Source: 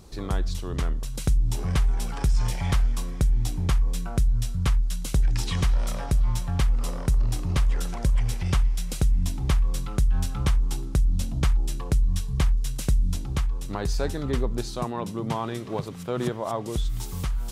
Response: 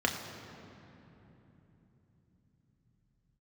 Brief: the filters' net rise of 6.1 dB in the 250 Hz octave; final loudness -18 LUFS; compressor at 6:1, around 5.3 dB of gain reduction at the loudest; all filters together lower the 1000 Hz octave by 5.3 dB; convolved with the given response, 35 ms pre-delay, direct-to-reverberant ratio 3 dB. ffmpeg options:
-filter_complex "[0:a]equalizer=f=250:t=o:g=9,equalizer=f=1k:t=o:g=-7.5,acompressor=threshold=-22dB:ratio=6,asplit=2[a][b];[1:a]atrim=start_sample=2205,adelay=35[c];[b][c]afir=irnorm=-1:irlink=0,volume=-12.5dB[d];[a][d]amix=inputs=2:normalize=0,volume=9.5dB"

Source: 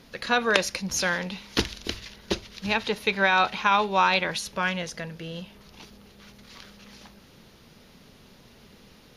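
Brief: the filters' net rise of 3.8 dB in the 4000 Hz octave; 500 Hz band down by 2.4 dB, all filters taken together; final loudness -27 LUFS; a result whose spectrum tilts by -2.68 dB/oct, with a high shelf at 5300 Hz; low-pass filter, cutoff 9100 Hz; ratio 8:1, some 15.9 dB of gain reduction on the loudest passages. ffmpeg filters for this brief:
-af "lowpass=9.1k,equalizer=f=500:t=o:g=-3,equalizer=f=4k:t=o:g=3.5,highshelf=f=5.3k:g=3,acompressor=threshold=-33dB:ratio=8,volume=10.5dB"

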